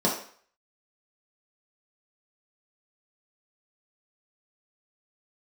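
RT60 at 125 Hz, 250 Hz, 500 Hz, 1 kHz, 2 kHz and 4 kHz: 0.35 s, 0.45 s, 0.50 s, 0.50 s, 0.50 s, 0.50 s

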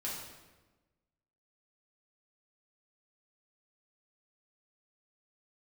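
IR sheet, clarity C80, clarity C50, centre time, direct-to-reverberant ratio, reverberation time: 4.0 dB, 1.5 dB, 64 ms, -6.5 dB, 1.2 s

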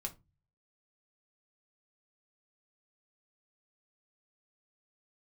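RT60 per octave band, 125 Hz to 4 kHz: 0.75 s, 0.40 s, 0.25 s, 0.25 s, 0.20 s, 0.15 s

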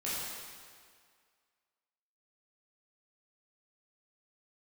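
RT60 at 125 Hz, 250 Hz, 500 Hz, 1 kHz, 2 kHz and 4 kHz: 1.7 s, 1.8 s, 1.9 s, 2.0 s, 1.9 s, 1.7 s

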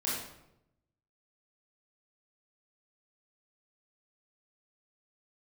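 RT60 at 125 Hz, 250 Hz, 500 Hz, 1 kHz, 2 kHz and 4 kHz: 1.2 s, 1.0 s, 0.90 s, 0.75 s, 0.70 s, 0.55 s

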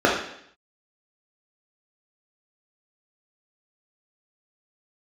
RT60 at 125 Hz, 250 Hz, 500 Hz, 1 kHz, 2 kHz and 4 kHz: 0.70 s, 0.70 s, 0.70 s, 0.65 s, 0.70 s, 0.75 s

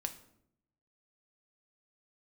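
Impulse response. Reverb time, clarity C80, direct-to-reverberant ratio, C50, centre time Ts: 0.75 s, 16.5 dB, 6.0 dB, 13.0 dB, 8 ms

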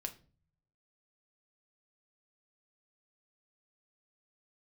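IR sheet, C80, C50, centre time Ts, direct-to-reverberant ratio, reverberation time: 20.5 dB, 15.5 dB, 7 ms, 5.0 dB, 0.40 s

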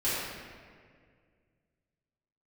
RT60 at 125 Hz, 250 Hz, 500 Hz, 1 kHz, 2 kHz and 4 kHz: 2.8 s, 2.4 s, 2.2 s, 1.7 s, 1.8 s, 1.2 s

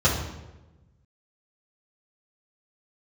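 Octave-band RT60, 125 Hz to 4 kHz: 1.7 s, 1.4 s, 1.2 s, 0.95 s, 0.85 s, 0.75 s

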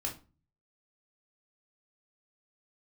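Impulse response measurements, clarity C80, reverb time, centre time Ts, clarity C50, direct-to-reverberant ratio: 18.0 dB, 0.35 s, 17 ms, 11.0 dB, -1.0 dB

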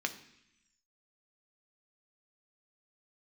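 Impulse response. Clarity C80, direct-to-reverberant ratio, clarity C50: 15.5 dB, 5.5 dB, 13.0 dB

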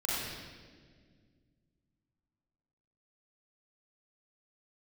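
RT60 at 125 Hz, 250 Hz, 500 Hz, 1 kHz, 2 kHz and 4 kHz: 3.1 s, 2.8 s, 2.2 s, 1.4 s, 1.5 s, 1.4 s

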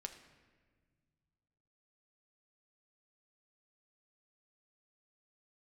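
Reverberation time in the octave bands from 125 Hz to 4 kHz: 3.1 s, 2.5 s, 1.8 s, 1.4 s, 1.4 s, 1.0 s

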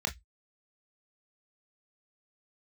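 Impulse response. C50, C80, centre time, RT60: 19.0 dB, 31.5 dB, 10 ms, 0.10 s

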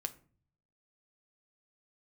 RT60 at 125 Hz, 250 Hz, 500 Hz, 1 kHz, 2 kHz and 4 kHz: 0.95 s, 0.70 s, 0.50 s, 0.40 s, 0.35 s, 0.25 s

